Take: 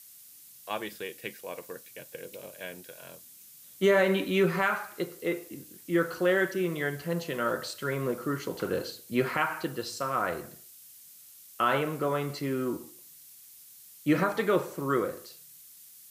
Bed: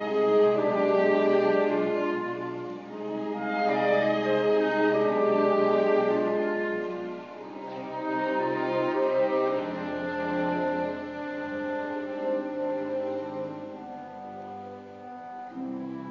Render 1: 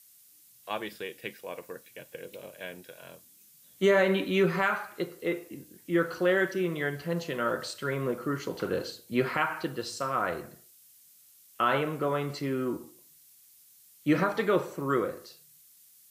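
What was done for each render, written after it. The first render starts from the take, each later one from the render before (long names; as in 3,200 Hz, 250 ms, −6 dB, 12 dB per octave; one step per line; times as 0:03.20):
noise reduction from a noise print 6 dB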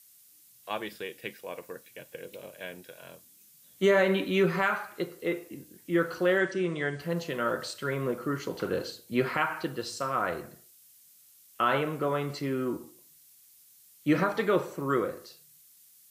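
0:06.38–0:07.00: linear-phase brick-wall low-pass 9,500 Hz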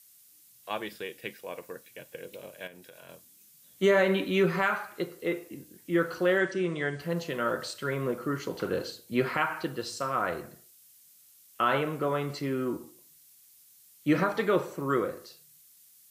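0:02.67–0:03.09: downward compressor 5 to 1, threshold −45 dBFS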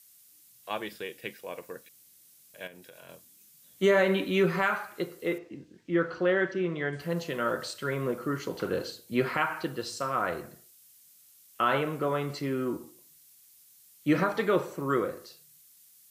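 0:01.89–0:02.54: fill with room tone
0:05.38–0:06.93: high-frequency loss of the air 150 metres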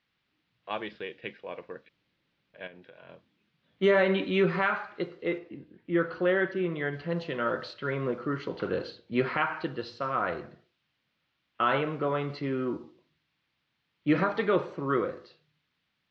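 low-pass filter 4,200 Hz 24 dB per octave
low-pass that shuts in the quiet parts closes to 2,400 Hz, open at −24 dBFS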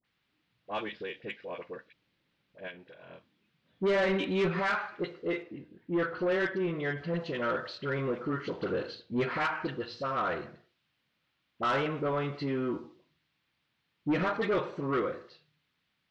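all-pass dispersion highs, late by 46 ms, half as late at 960 Hz
soft clipping −22.5 dBFS, distortion −13 dB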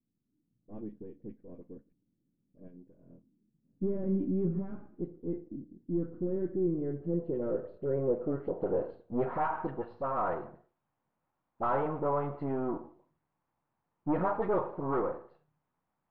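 gain on one half-wave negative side −7 dB
low-pass filter sweep 260 Hz → 900 Hz, 0:06.10–0:09.59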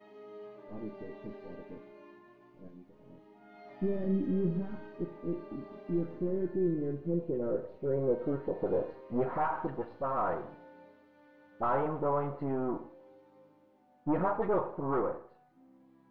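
mix in bed −26.5 dB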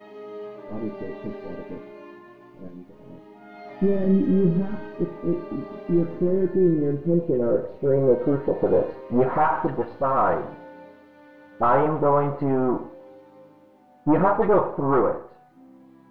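level +11 dB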